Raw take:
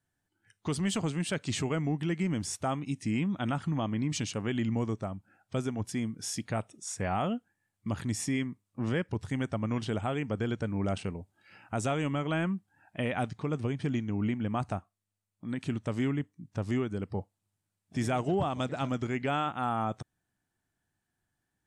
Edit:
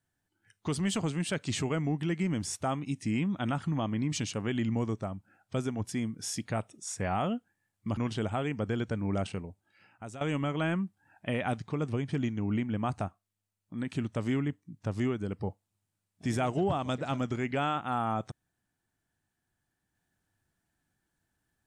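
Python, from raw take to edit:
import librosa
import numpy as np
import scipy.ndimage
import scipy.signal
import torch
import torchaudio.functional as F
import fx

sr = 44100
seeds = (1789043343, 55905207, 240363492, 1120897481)

y = fx.edit(x, sr, fx.cut(start_s=7.97, length_s=1.71),
    fx.fade_out_to(start_s=10.88, length_s=1.04, floor_db=-15.0), tone=tone)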